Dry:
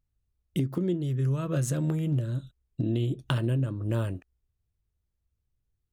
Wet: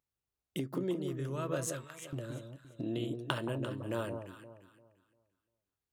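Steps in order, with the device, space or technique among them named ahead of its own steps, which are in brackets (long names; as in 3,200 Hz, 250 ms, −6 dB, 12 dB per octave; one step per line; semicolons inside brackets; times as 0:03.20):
filter by subtraction (in parallel: low-pass filter 690 Hz 12 dB per octave + polarity inversion)
0:01.67–0:02.13: on the sum: high-pass filter 1,200 Hz 24 dB per octave
delay that swaps between a low-pass and a high-pass 173 ms, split 1,000 Hz, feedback 52%, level −5.5 dB
level −2.5 dB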